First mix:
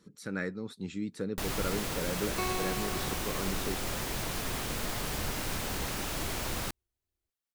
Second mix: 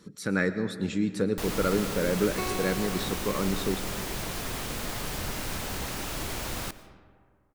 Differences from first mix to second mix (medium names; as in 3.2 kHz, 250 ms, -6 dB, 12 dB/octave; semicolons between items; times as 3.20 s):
speech +7.5 dB; reverb: on, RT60 2.0 s